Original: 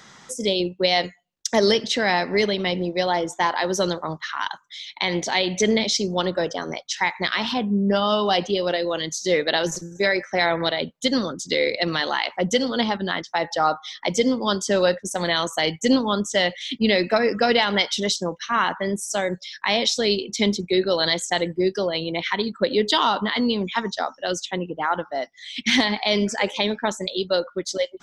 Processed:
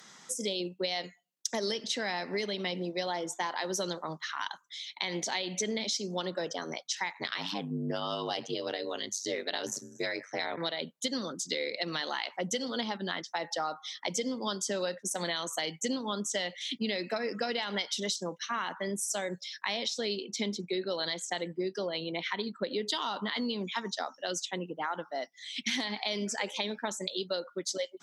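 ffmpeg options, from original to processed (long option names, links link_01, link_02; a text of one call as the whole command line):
ffmpeg -i in.wav -filter_complex "[0:a]asplit=3[link_01][link_02][link_03];[link_01]afade=type=out:start_time=7.12:duration=0.02[link_04];[link_02]aeval=exprs='val(0)*sin(2*PI*49*n/s)':channel_layout=same,afade=type=in:start_time=7.12:duration=0.02,afade=type=out:start_time=10.56:duration=0.02[link_05];[link_03]afade=type=in:start_time=10.56:duration=0.02[link_06];[link_04][link_05][link_06]amix=inputs=3:normalize=0,asettb=1/sr,asplit=3[link_07][link_08][link_09];[link_07]atrim=end=19.854[link_10];[link_08]atrim=start=19.85:end=22.82,asetpts=PTS-STARTPTS,afade=type=in:duration=0.004:curve=qsin,afade=type=out:start_time=2.966:duration=0.004:curve=qsin,highshelf=frequency=7400:gain=-12[link_11];[link_09]atrim=start=22.816[link_12];[link_10][link_11]acrossfade=duration=0.004:curve1=hsin:curve2=qsin[link_13];[link_13][link_12]acrossfade=duration=0.004:curve1=qsin:curve2=hsin,highpass=frequency=150:width=0.5412,highpass=frequency=150:width=1.3066,aemphasis=mode=production:type=cd,acompressor=threshold=-21dB:ratio=6,volume=-8dB" out.wav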